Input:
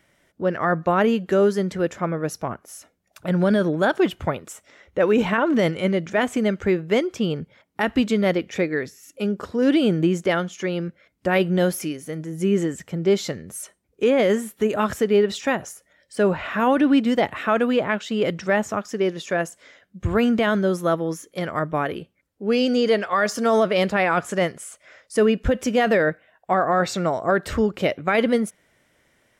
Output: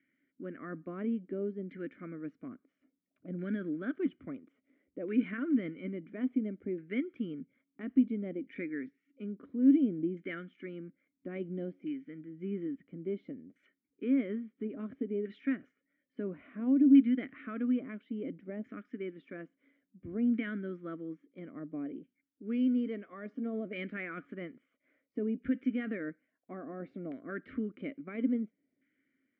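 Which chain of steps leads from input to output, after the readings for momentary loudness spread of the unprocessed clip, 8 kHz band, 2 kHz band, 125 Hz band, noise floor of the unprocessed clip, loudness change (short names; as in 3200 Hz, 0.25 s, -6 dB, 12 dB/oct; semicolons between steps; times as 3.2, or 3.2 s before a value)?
12 LU, under -40 dB, -20.0 dB, -18.0 dB, -66 dBFS, -12.5 dB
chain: LFO low-pass saw down 0.59 Hz 760–1600 Hz; vowel filter i; gain -2.5 dB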